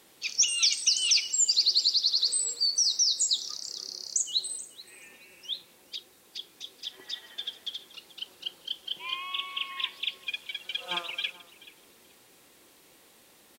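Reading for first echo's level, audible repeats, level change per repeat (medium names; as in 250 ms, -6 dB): -19.5 dB, 2, -15.0 dB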